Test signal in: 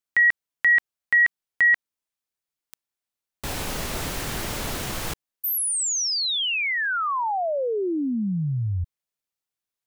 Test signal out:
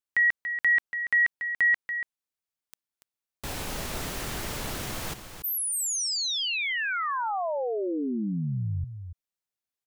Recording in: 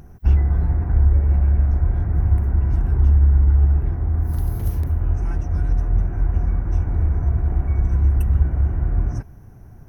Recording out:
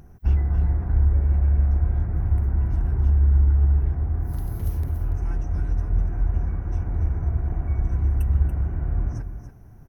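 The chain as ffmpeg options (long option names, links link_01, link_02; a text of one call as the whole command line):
ffmpeg -i in.wav -af "aecho=1:1:285:0.335,volume=-4.5dB" out.wav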